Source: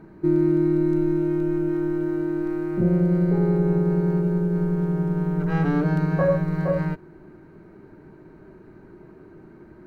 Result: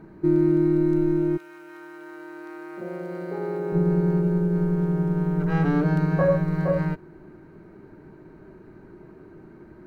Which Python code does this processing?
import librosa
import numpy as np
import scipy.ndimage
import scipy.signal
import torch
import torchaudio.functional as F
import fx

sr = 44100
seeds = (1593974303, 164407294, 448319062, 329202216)

y = fx.highpass(x, sr, hz=fx.line((1.36, 1400.0), (3.72, 390.0)), slope=12, at=(1.36, 3.72), fade=0.02)